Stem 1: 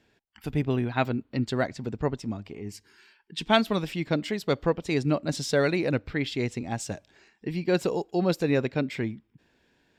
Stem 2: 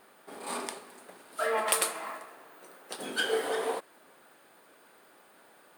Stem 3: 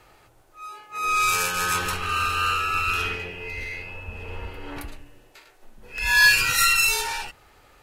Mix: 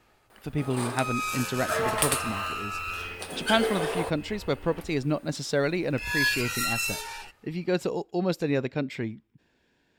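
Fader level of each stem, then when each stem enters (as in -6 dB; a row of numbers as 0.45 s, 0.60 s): -2.0 dB, +1.5 dB, -9.5 dB; 0.00 s, 0.30 s, 0.00 s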